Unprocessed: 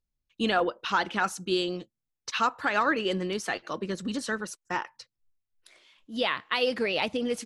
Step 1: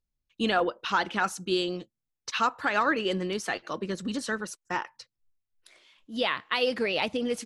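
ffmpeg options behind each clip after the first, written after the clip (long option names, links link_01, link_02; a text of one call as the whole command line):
ffmpeg -i in.wav -af anull out.wav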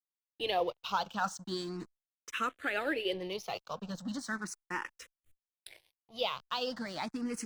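ffmpeg -i in.wav -filter_complex "[0:a]areverse,acompressor=mode=upward:threshold=-28dB:ratio=2.5,areverse,aeval=exprs='sgn(val(0))*max(abs(val(0))-0.00596,0)':channel_layout=same,asplit=2[link_01][link_02];[link_02]afreqshift=0.37[link_03];[link_01][link_03]amix=inputs=2:normalize=1,volume=-3dB" out.wav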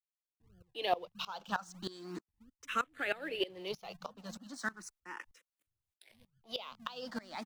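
ffmpeg -i in.wav -filter_complex "[0:a]acrossover=split=160[link_01][link_02];[link_02]adelay=350[link_03];[link_01][link_03]amix=inputs=2:normalize=0,acrossover=split=190|900[link_04][link_05][link_06];[link_04]acrusher=samples=39:mix=1:aa=0.000001:lfo=1:lforange=23.4:lforate=3.1[link_07];[link_07][link_05][link_06]amix=inputs=3:normalize=0,aeval=exprs='val(0)*pow(10,-20*if(lt(mod(-3.2*n/s,1),2*abs(-3.2)/1000),1-mod(-3.2*n/s,1)/(2*abs(-3.2)/1000),(mod(-3.2*n/s,1)-2*abs(-3.2)/1000)/(1-2*abs(-3.2)/1000))/20)':channel_layout=same,volume=3dB" out.wav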